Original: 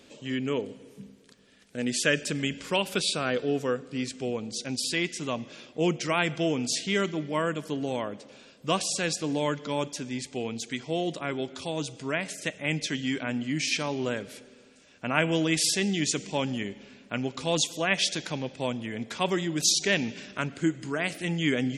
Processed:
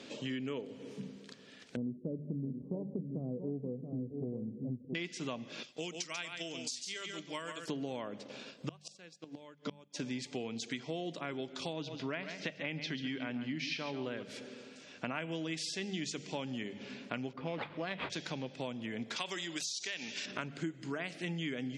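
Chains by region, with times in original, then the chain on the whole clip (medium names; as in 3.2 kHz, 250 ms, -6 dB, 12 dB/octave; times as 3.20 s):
1.76–4.95 s: Gaussian low-pass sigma 17 samples + bass shelf 220 Hz +11 dB + delay 678 ms -9.5 dB
5.63–7.68 s: pre-emphasis filter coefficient 0.9 + transient shaper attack +6 dB, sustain -2 dB + delay 139 ms -7.5 dB
8.18–10.00 s: transient shaper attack 0 dB, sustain -9 dB + inverted gate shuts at -20 dBFS, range -30 dB
11.73–14.23 s: low-pass 5 kHz 24 dB/octave + delay 139 ms -10.5 dB
17.33–18.10 s: level-controlled noise filter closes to 1.4 kHz, open at -21.5 dBFS + sample-rate reducer 5.8 kHz + distance through air 310 m
19.16–20.26 s: tilt EQ +4 dB/octave + compression 2.5:1, threshold -24 dBFS
whole clip: hum notches 50/100/150/200 Hz; compression 6:1, threshold -41 dBFS; Chebyshev band-pass 140–5300 Hz, order 2; trim +5 dB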